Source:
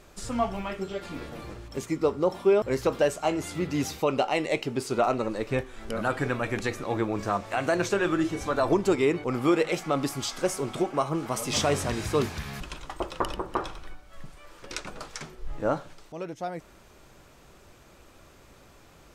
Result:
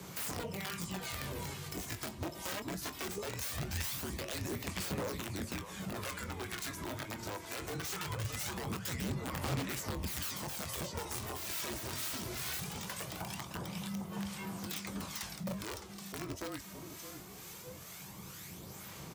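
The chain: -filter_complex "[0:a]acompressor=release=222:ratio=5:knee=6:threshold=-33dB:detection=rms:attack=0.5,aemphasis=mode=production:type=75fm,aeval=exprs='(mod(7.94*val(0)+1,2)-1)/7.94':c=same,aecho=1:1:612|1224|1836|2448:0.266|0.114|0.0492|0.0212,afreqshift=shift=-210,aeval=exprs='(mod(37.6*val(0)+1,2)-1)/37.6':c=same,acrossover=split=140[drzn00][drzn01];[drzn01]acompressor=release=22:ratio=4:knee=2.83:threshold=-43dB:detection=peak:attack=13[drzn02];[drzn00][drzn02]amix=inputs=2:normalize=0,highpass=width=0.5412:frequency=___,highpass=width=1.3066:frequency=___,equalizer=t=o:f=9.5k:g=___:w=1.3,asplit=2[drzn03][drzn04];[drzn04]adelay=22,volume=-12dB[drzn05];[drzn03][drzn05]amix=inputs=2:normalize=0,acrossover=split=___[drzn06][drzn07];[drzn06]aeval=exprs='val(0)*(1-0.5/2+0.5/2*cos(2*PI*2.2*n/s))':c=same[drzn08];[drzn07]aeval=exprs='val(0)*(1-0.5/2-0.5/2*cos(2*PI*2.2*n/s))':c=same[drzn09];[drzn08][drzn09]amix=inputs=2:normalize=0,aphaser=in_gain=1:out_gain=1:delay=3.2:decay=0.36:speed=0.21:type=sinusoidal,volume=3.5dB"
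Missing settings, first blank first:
64, 64, -2.5, 980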